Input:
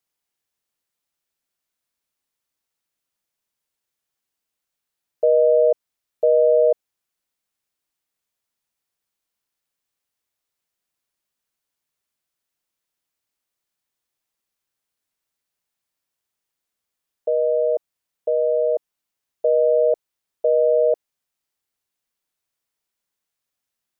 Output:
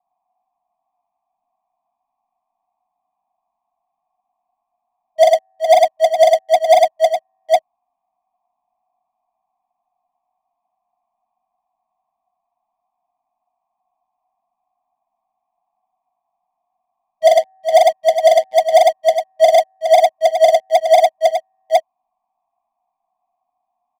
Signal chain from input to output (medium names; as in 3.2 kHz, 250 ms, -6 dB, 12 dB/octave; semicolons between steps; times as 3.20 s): cascade formant filter a; in parallel at -1 dB: compressor with a negative ratio -39 dBFS, ratio -0.5; on the sum: FFT band-reject 300–640 Hz; waveshaping leveller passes 5; static phaser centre 390 Hz, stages 6; on a send: multi-tap echo 42/103/414/813 ms -5.5/-5/-11.5/-5 dB; on the sum: loudness maximiser +28.5 dB; trim -1 dB